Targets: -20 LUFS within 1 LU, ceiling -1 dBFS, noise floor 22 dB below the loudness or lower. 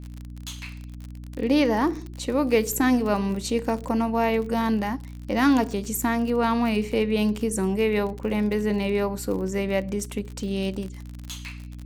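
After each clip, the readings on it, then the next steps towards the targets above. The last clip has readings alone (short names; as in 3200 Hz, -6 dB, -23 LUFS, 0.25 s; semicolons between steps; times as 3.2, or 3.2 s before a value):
ticks 41/s; hum 60 Hz; harmonics up to 300 Hz; hum level -35 dBFS; loudness -24.5 LUFS; peak -8.0 dBFS; loudness target -20.0 LUFS
-> de-click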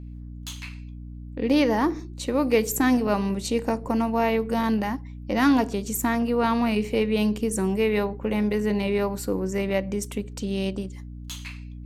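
ticks 0.25/s; hum 60 Hz; harmonics up to 300 Hz; hum level -36 dBFS
-> de-hum 60 Hz, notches 5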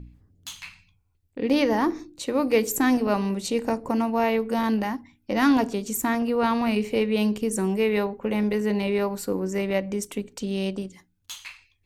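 hum none; loudness -25.0 LUFS; peak -9.0 dBFS; loudness target -20.0 LUFS
-> gain +5 dB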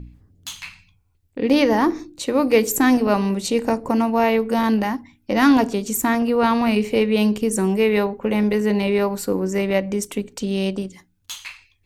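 loudness -20.0 LUFS; peak -4.0 dBFS; noise floor -63 dBFS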